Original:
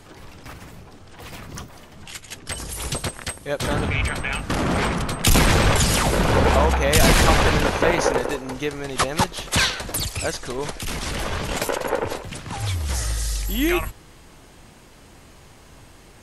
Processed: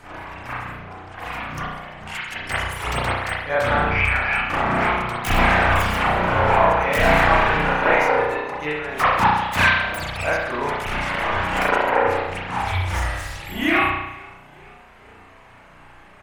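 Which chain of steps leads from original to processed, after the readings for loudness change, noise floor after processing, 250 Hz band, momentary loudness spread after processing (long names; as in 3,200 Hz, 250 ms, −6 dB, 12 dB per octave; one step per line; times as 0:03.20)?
+1.5 dB, −47 dBFS, −2.5 dB, 15 LU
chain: phase distortion by the signal itself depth 0.11 ms
on a send: echo with shifted repeats 454 ms, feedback 51%, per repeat +32 Hz, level −22.5 dB
on the sum: reverb reduction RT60 0.91 s
flat-topped bell 1,300 Hz +9 dB 2.3 octaves
spring reverb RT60 1 s, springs 33 ms, chirp 35 ms, DRR −9.5 dB
in parallel at 0 dB: speech leveller 2 s
on the sum: level −17 dB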